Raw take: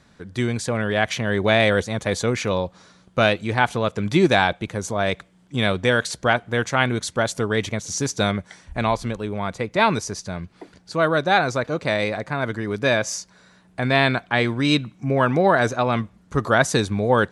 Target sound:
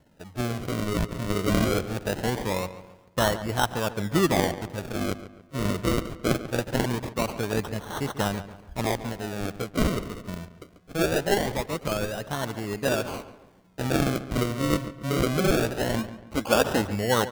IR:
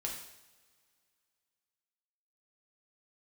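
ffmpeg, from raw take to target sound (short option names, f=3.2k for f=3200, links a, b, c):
-filter_complex "[0:a]asettb=1/sr,asplit=3[a][b][c];[a]atrim=end=15.984[d];[b]atrim=start=15.98:end=16.82,asetpts=PTS-STARTPTS,afade=t=in:d=0.004:c=qsin,afade=t=out:st=0.836:d=0.004:c=qsin,aecho=1:1:3.7:0.76,atrim=end_sample=37044[e];[c]atrim=start=16.816[f];[d][e]acrossfade=d=0.004:c1=hsin:c2=qsin[g];[g][f]acrossfade=d=0.004:c1=qsin:c2=hsin,acrusher=samples=36:mix=1:aa=0.000001:lfo=1:lforange=36:lforate=0.22,asplit=2[h][i];[i]adelay=141,lowpass=f=3.1k:p=1,volume=-13dB,asplit=2[j][k];[k]adelay=141,lowpass=f=3.1k:p=1,volume=0.41,asplit=2[l][m];[m]adelay=141,lowpass=f=3.1k:p=1,volume=0.41,asplit=2[n][o];[o]adelay=141,lowpass=f=3.1k:p=1,volume=0.41[p];[h][j][l][n][p]amix=inputs=5:normalize=0,volume=-5.5dB"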